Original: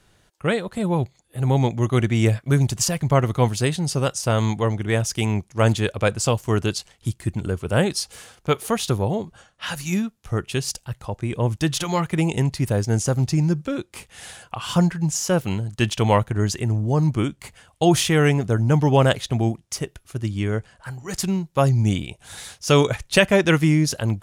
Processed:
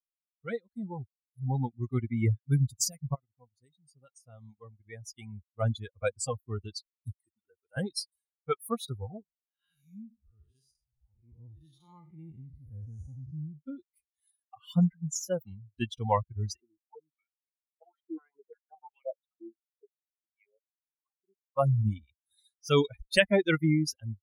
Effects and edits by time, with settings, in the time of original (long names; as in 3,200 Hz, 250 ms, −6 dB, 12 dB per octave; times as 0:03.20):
0:03.15–0:05.98: fade in, from −15 dB
0:07.12–0:07.77: high-pass filter 730 Hz 6 dB per octave
0:09.23–0:13.58: spectrum smeared in time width 235 ms
0:16.60–0:21.48: band-pass on a step sequencer 5.7 Hz 320–2,400 Hz
whole clip: spectral dynamics exaggerated over time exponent 3; level −3 dB